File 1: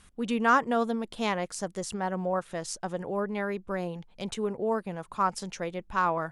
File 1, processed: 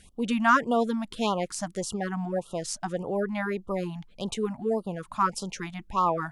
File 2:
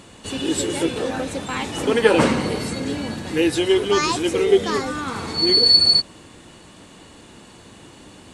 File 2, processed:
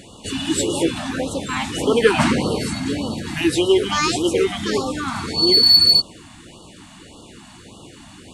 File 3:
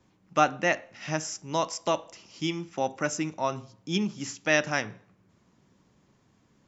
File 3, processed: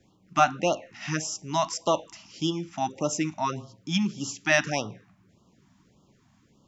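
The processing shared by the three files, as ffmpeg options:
-af "acontrast=31,afftfilt=real='re*(1-between(b*sr/1024,400*pow(2000/400,0.5+0.5*sin(2*PI*1.7*pts/sr))/1.41,400*pow(2000/400,0.5+0.5*sin(2*PI*1.7*pts/sr))*1.41))':imag='im*(1-between(b*sr/1024,400*pow(2000/400,0.5+0.5*sin(2*PI*1.7*pts/sr))/1.41,400*pow(2000/400,0.5+0.5*sin(2*PI*1.7*pts/sr))*1.41))':win_size=1024:overlap=0.75,volume=0.75"

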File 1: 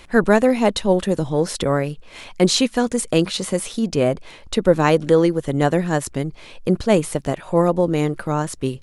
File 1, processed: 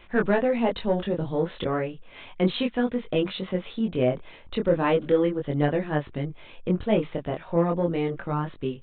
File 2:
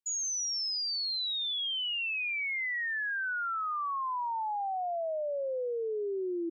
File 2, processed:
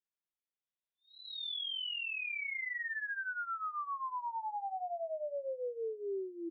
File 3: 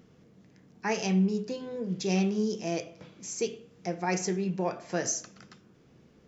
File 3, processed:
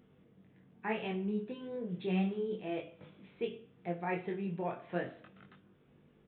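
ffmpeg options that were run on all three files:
-af "acontrast=21,flanger=delay=20:depth=4.3:speed=0.34,aresample=8000,aresample=44100,volume=0.422"

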